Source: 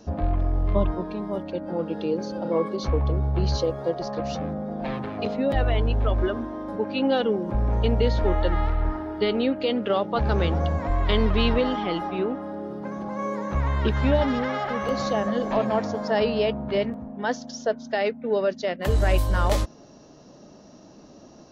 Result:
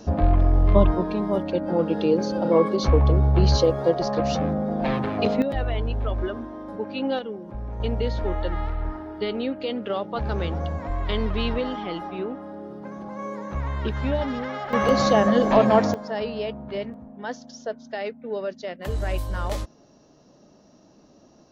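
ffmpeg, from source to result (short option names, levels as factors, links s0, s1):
-af "asetnsamples=n=441:p=0,asendcmd='5.42 volume volume -3.5dB;7.19 volume volume -10dB;7.8 volume volume -4dB;14.73 volume volume 6.5dB;15.94 volume volume -6dB',volume=1.88"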